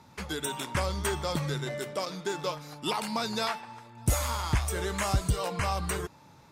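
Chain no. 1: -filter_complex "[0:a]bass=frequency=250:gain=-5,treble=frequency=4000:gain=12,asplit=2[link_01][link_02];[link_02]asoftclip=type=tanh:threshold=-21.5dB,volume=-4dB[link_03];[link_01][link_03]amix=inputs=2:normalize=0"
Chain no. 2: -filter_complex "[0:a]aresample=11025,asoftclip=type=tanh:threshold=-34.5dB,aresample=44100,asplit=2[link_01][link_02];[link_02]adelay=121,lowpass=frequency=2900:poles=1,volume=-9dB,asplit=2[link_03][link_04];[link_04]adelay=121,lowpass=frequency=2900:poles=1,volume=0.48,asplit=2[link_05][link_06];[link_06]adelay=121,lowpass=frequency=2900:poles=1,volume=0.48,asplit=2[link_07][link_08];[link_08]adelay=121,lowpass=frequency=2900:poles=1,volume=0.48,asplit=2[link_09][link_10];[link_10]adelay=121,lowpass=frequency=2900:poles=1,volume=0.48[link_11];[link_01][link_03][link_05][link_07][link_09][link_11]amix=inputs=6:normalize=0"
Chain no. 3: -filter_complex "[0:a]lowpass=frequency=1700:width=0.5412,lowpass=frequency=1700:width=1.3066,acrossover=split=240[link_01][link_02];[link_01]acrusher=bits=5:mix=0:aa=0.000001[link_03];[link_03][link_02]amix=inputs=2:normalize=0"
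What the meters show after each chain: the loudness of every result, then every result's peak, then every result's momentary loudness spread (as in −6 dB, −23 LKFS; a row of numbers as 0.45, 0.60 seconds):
−24.0, −38.0, −32.5 LKFS; −7.0, −29.0, −14.0 dBFS; 7, 5, 8 LU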